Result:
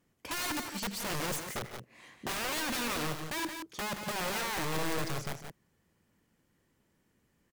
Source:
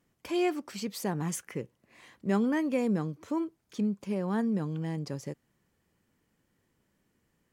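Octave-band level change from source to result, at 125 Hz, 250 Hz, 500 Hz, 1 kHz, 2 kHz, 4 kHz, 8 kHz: -6.5, -10.5, -6.0, +2.5, +6.5, +9.0, +6.0 dB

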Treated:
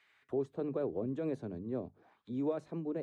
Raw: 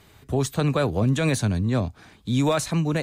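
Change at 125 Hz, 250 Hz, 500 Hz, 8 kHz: -22.5 dB, -13.0 dB, -9.5 dB, under -35 dB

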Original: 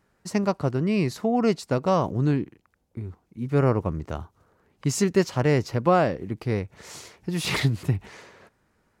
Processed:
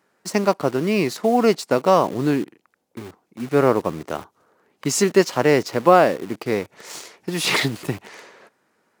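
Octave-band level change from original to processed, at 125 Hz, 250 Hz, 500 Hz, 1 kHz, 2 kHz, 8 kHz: -4.5, +3.0, +6.5, +7.0, +7.0, +7.5 dB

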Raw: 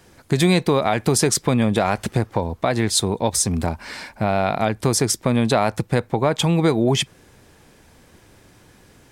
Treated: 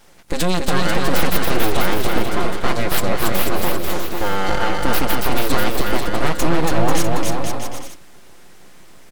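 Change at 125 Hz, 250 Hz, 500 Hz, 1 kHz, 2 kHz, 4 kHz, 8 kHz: -4.0, -2.0, -1.0, +2.5, +5.0, +0.5, -4.5 dB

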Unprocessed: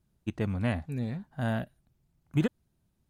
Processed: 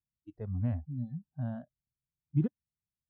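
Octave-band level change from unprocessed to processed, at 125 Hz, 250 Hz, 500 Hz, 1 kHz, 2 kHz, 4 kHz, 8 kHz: -1.5 dB, -4.5 dB, -10.5 dB, -14.0 dB, -21.0 dB, under -25 dB, n/a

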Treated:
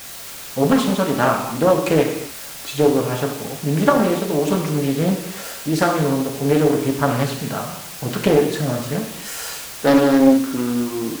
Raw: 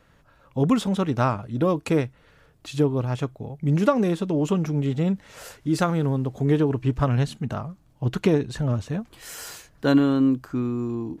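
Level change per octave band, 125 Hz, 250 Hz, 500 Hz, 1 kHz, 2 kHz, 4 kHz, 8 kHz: 0.0, +4.5, +8.0, +7.5, +9.0, +9.5, +13.0 dB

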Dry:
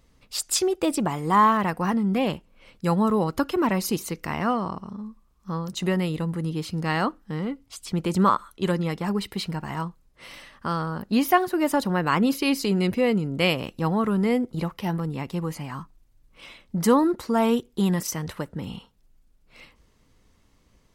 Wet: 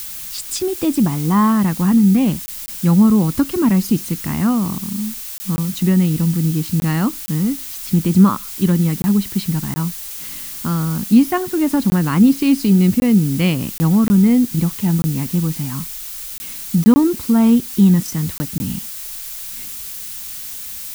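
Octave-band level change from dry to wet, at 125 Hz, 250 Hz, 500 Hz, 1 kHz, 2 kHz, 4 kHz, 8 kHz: +11.5, +11.0, 0.0, -2.0, -0.5, +2.0, +7.5 dB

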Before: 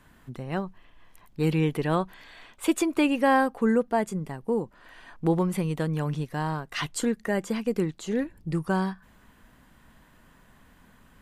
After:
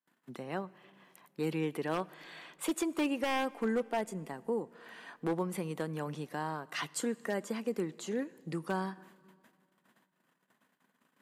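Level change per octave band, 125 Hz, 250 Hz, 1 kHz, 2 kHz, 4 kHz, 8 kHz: -13.0, -9.5, -8.5, -7.5, -5.5, -5.0 dB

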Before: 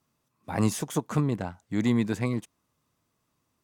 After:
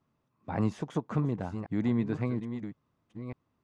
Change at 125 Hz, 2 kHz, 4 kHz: -2.5 dB, -7.0 dB, under -10 dB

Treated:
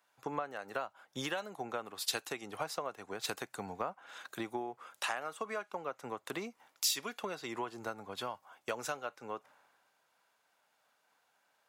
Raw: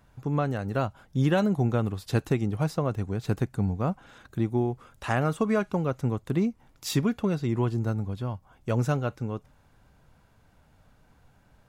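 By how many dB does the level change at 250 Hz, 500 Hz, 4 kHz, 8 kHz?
-19.0, -11.0, +2.0, +3.5 dB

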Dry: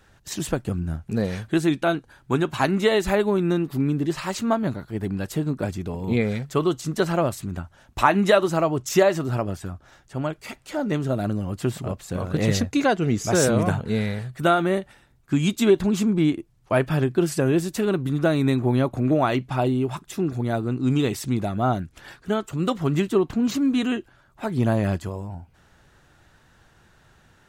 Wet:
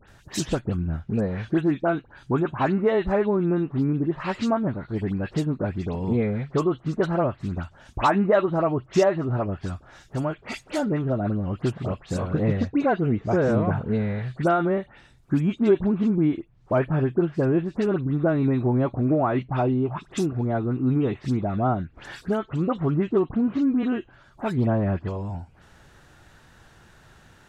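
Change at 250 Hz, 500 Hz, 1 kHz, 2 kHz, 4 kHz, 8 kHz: -0.5 dB, -1.0 dB, -1.5 dB, -4.5 dB, -8.5 dB, under -10 dB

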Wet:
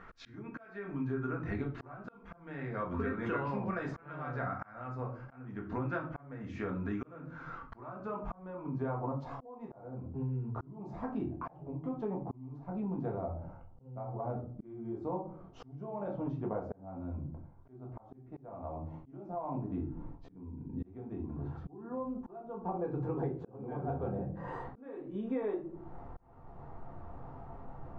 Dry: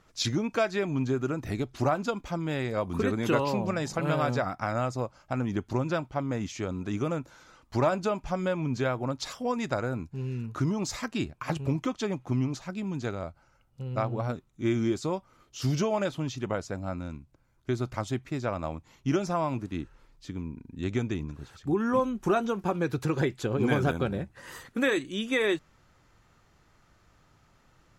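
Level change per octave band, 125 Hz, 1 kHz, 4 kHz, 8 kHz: -8.5 dB, -8.5 dB, under -25 dB, under -30 dB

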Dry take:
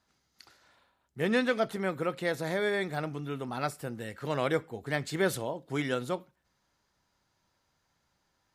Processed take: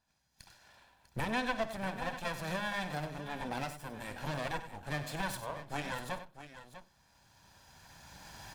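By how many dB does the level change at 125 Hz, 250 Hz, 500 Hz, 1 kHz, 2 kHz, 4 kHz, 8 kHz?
-4.5, -7.5, -10.5, -1.5, -4.0, -3.0, -3.0 dB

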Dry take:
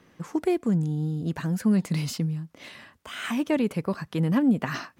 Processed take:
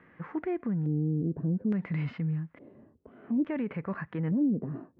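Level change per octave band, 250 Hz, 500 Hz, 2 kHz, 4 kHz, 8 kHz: -4.5 dB, -7.0 dB, -9.5 dB, under -20 dB, under -35 dB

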